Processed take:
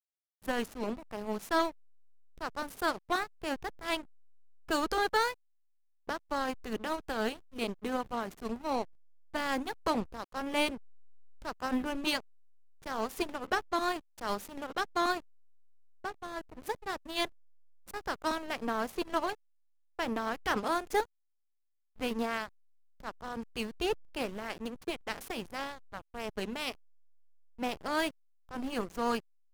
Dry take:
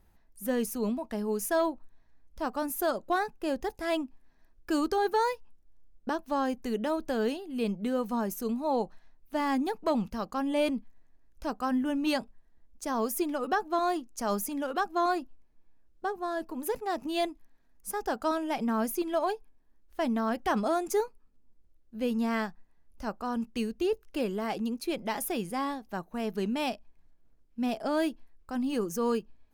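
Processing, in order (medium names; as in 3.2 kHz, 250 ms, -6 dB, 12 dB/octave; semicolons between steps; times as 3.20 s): spectral peaks clipped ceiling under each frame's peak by 16 dB; hysteresis with a dead band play -28.5 dBFS; upward expansion 1.5:1, over -38 dBFS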